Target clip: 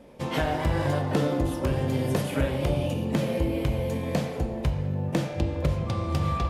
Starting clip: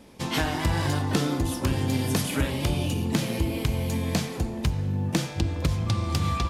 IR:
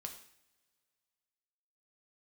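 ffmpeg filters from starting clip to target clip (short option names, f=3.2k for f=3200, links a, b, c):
-filter_complex "[0:a]asplit=2[a][b];[b]equalizer=f=560:t=o:w=0.62:g=12.5[c];[1:a]atrim=start_sample=2205,asetrate=32634,aresample=44100,lowpass=3.3k[d];[c][d]afir=irnorm=-1:irlink=0,volume=4dB[e];[a][e]amix=inputs=2:normalize=0,volume=-8dB"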